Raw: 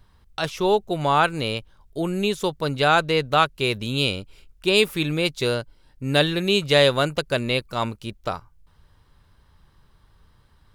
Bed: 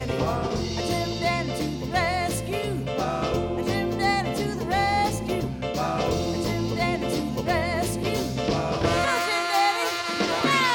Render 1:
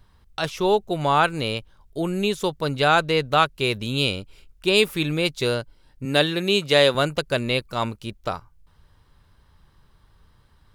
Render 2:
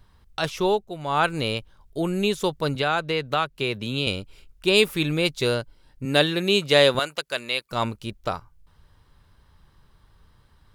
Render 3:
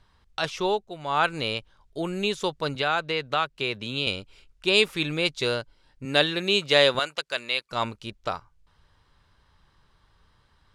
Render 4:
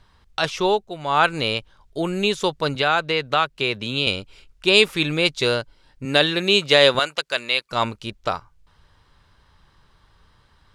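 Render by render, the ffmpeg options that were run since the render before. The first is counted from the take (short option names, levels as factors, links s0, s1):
-filter_complex "[0:a]asettb=1/sr,asplit=3[s0][s1][s2];[s0]atrim=end=6.054[s3];[s1]atrim=start=6.05:end=6.95,asetpts=PTS-STARTPTS,afade=t=in:d=0.004:c=qsin,afade=t=out:st=0.896:d=0.004:c=qsin,highpass=160[s4];[s2]atrim=start=6.946[s5];[s3][s4]acrossfade=d=0.004:c1=hsin:c2=qsin[s6];[s6][s5]acrossfade=d=0.004:c1=qsin:c2=hsin"
-filter_complex "[0:a]asettb=1/sr,asplit=3[s0][s1][s2];[s0]atrim=end=2.754[s3];[s1]atrim=start=2.75:end=4.07,asetpts=PTS-STARTPTS,afade=t=in:d=0.004:c=qsin,afade=t=out:st=1.316:d=0.004:c=qsin,acrossover=split=91|1100|4300[s4][s5][s6][s7];[s4]acompressor=threshold=0.00141:ratio=3[s8];[s5]acompressor=threshold=0.0562:ratio=3[s9];[s6]acompressor=threshold=0.0501:ratio=3[s10];[s7]acompressor=threshold=0.00501:ratio=3[s11];[s8][s9][s10][s11]amix=inputs=4:normalize=0[s12];[s2]atrim=start=4.066[s13];[s3][s12]acrossfade=d=0.004:c1=hsin:c2=qsin[s14];[s14][s13]acrossfade=d=0.004:c1=qsin:c2=hsin,asettb=1/sr,asplit=3[s15][s16][s17];[s15]atrim=end=6.994[s18];[s16]atrim=start=6.99:end=7.71,asetpts=PTS-STARTPTS,afade=t=in:d=0.004:c=qsin,afade=t=out:st=0.716:d=0.004:c=qsin,highpass=f=1200:p=1[s19];[s17]atrim=start=7.706[s20];[s18][s19]acrossfade=d=0.004:c1=hsin:c2=qsin[s21];[s21][s20]acrossfade=d=0.004:c1=qsin:c2=hsin,asplit=3[s22][s23][s24];[s22]atrim=end=0.88,asetpts=PTS-STARTPTS,afade=t=out:st=0.62:d=0.26:silence=0.354813[s25];[s23]atrim=start=0.88:end=1.05,asetpts=PTS-STARTPTS,volume=0.355[s26];[s24]atrim=start=1.05,asetpts=PTS-STARTPTS,afade=t=in:d=0.26:silence=0.354813[s27];[s25][s26][s27]concat=n=3:v=0:a=1"
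-af "lowpass=7300,lowshelf=f=460:g=-7"
-af "volume=1.88,alimiter=limit=0.891:level=0:latency=1"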